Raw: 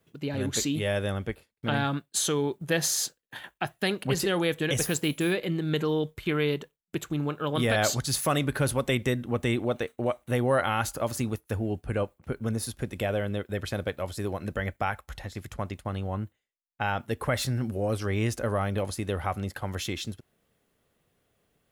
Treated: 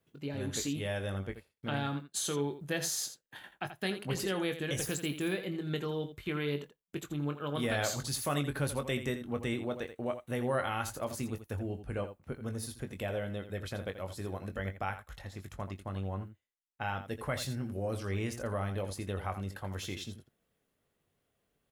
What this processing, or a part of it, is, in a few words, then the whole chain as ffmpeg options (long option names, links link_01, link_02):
slapback doubling: -filter_complex "[0:a]asplit=3[link_01][link_02][link_03];[link_02]adelay=21,volume=-8.5dB[link_04];[link_03]adelay=83,volume=-11dB[link_05];[link_01][link_04][link_05]amix=inputs=3:normalize=0,volume=-8dB"